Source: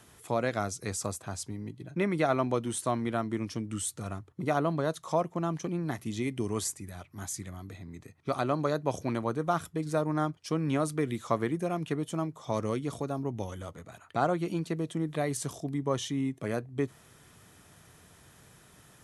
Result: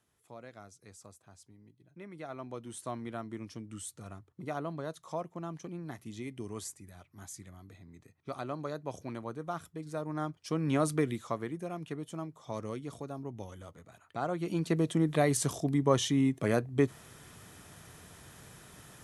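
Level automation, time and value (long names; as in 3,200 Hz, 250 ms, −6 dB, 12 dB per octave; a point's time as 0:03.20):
0:02.00 −19.5 dB
0:02.89 −9 dB
0:09.93 −9 dB
0:10.95 +2 dB
0:11.37 −7.5 dB
0:14.22 −7.5 dB
0:14.75 +4 dB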